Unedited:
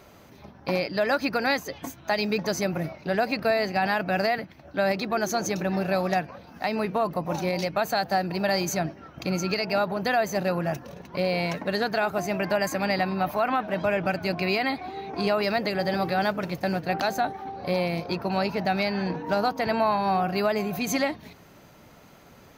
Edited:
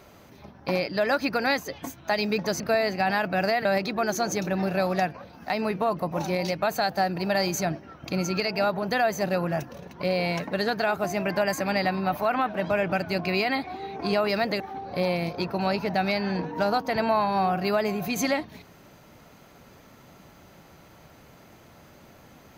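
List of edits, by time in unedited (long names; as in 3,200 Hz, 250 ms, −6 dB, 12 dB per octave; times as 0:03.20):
0:02.60–0:03.36: remove
0:04.41–0:04.79: remove
0:15.74–0:17.31: remove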